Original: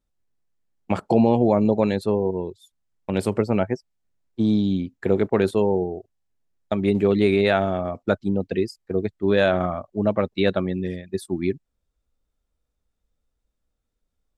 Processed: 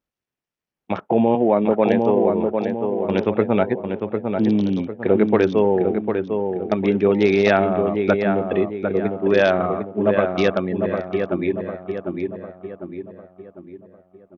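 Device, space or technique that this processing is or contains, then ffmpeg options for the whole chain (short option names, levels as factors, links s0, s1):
Bluetooth headset: -filter_complex "[0:a]asettb=1/sr,asplit=3[s0][s1][s2];[s0]atrim=end=1.354[s3];[s1]atrim=start=1.35:end=2.3,asetpts=PTS-STARTPTS,afade=t=in:d=0.004:c=qsin,afade=t=out:st=0.946:d=0.004:c=qsin,highpass=170[s4];[s2]atrim=start=2.296[s5];[s3][s4]acrossfade=d=0.004:c1=hsin:c2=qsin[s6];[s6][s5]acrossfade=d=0.004:c1=qsin:c2=hsin,highpass=f=220:p=1,asplit=2[s7][s8];[s8]adelay=751,lowpass=f=2000:p=1,volume=0.562,asplit=2[s9][s10];[s10]adelay=751,lowpass=f=2000:p=1,volume=0.45,asplit=2[s11][s12];[s12]adelay=751,lowpass=f=2000:p=1,volume=0.45,asplit=2[s13][s14];[s14]adelay=751,lowpass=f=2000:p=1,volume=0.45,asplit=2[s15][s16];[s16]adelay=751,lowpass=f=2000:p=1,volume=0.45,asplit=2[s17][s18];[s18]adelay=751,lowpass=f=2000:p=1,volume=0.45[s19];[s7][s9][s11][s13][s15][s17][s19]amix=inputs=7:normalize=0,dynaudnorm=f=130:g=21:m=2,aresample=8000,aresample=44100" -ar 48000 -c:a sbc -b:a 64k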